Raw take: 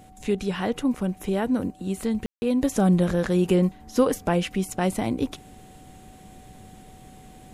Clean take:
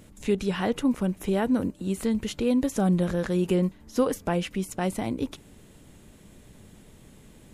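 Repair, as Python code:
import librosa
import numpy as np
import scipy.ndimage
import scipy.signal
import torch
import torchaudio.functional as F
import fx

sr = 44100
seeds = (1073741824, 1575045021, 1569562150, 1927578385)

y = fx.notch(x, sr, hz=750.0, q=30.0)
y = fx.fix_ambience(y, sr, seeds[0], print_start_s=5.39, print_end_s=5.89, start_s=2.26, end_s=2.42)
y = fx.gain(y, sr, db=fx.steps((0.0, 0.0), (2.61, -3.5)))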